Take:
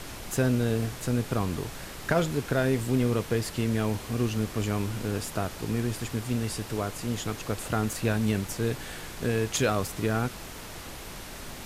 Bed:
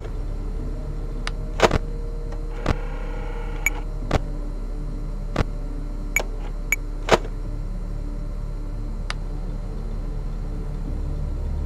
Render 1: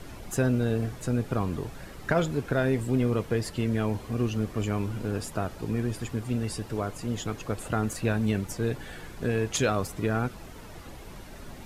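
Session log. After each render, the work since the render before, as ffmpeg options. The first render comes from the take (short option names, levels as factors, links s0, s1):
-af "afftdn=nr=10:nf=-41"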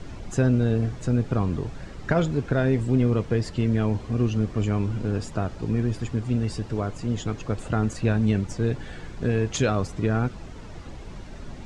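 -af "lowpass=f=7600:w=0.5412,lowpass=f=7600:w=1.3066,lowshelf=f=300:g=6.5"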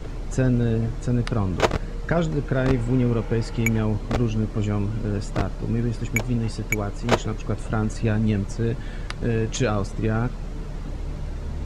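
-filter_complex "[1:a]volume=0.631[s0];[0:a][s0]amix=inputs=2:normalize=0"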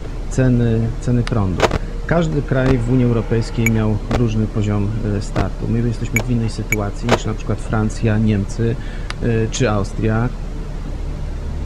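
-af "volume=2,alimiter=limit=0.794:level=0:latency=1"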